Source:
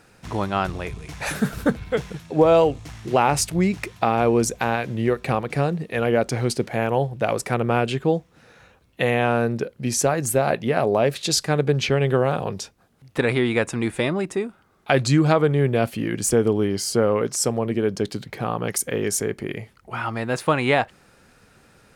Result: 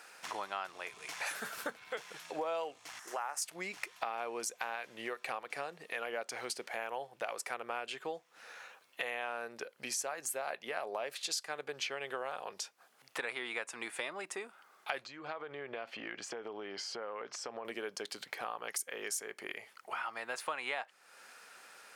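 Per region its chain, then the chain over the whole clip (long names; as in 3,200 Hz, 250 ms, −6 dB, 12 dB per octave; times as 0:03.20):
0:02.99–0:03.42: high-pass filter 1,300 Hz 6 dB per octave + flat-topped bell 3,200 Hz −12.5 dB 1.3 octaves
0:15.05–0:17.65: downward compressor 12 to 1, threshold −23 dBFS + high-frequency loss of the air 200 metres
whole clip: high-pass filter 810 Hz 12 dB per octave; notch filter 3,800 Hz, Q 26; downward compressor 3 to 1, threshold −43 dBFS; level +2.5 dB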